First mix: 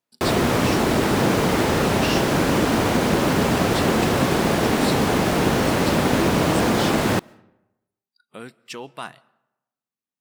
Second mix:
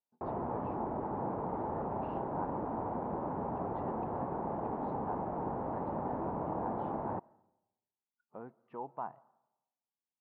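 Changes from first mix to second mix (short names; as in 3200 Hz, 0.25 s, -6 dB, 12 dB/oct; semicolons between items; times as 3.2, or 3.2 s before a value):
background -9.5 dB; master: add ladder low-pass 1000 Hz, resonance 60%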